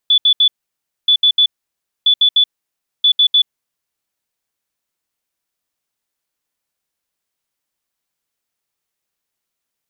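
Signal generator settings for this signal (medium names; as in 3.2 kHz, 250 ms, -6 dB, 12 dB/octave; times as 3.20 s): beep pattern sine 3.46 kHz, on 0.08 s, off 0.07 s, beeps 3, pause 0.60 s, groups 4, -7.5 dBFS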